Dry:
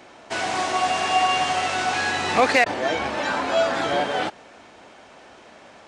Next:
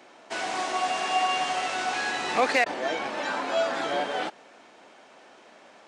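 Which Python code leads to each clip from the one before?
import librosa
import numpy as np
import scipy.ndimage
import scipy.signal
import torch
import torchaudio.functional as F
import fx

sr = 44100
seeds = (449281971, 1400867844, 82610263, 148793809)

y = scipy.signal.sosfilt(scipy.signal.butter(2, 210.0, 'highpass', fs=sr, output='sos'), x)
y = y * 10.0 ** (-5.0 / 20.0)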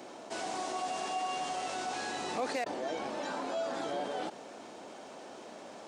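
y = fx.peak_eq(x, sr, hz=2000.0, db=-10.5, octaves=2.1)
y = fx.env_flatten(y, sr, amount_pct=50)
y = y * 10.0 ** (-8.5 / 20.0)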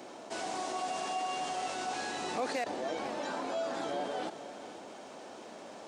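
y = x + 10.0 ** (-14.0 / 20.0) * np.pad(x, (int(492 * sr / 1000.0), 0))[:len(x)]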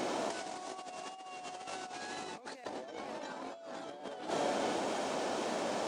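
y = fx.over_compress(x, sr, threshold_db=-43.0, ratio=-0.5)
y = fx.wow_flutter(y, sr, seeds[0], rate_hz=2.1, depth_cents=27.0)
y = y * 10.0 ** (5.0 / 20.0)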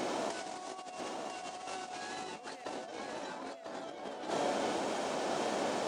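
y = x + 10.0 ** (-6.0 / 20.0) * np.pad(x, (int(996 * sr / 1000.0), 0))[:len(x)]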